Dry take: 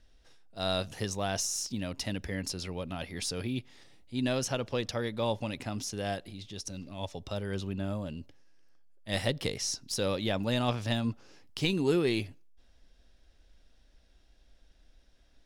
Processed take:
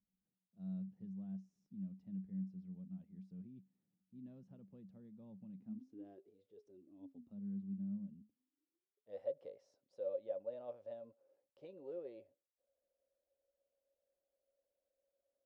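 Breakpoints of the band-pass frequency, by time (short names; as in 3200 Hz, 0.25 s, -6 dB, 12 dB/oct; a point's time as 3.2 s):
band-pass, Q 20
5.59 s 190 Hz
6.44 s 500 Hz
7.43 s 200 Hz
8.2 s 200 Hz
9.26 s 550 Hz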